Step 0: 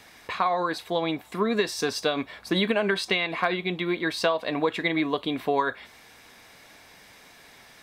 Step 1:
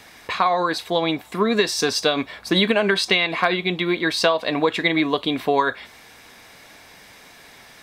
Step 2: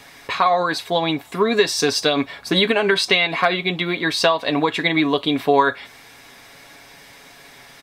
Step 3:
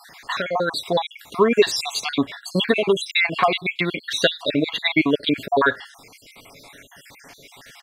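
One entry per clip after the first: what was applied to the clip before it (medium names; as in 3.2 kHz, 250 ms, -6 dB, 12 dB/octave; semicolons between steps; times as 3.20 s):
dynamic bell 5.2 kHz, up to +4 dB, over -43 dBFS, Q 0.72; trim +5 dB
comb 7.2 ms, depth 44%; trim +1 dB
random holes in the spectrogram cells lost 55%; trim +2 dB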